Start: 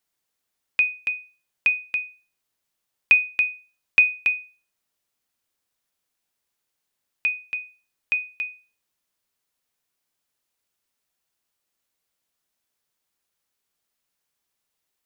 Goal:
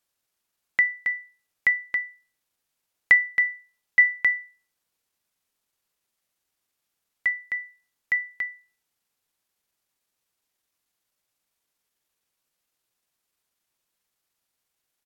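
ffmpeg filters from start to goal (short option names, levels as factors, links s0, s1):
-af "asetrate=35002,aresample=44100,atempo=1.25992"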